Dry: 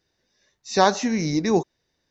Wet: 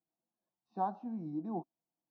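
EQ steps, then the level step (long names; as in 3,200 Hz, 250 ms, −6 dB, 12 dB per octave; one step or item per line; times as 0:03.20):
pair of resonant band-passes 420 Hz, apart 1.2 octaves
high-frequency loss of the air 350 metres
phaser with its sweep stopped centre 400 Hz, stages 8
−1.0 dB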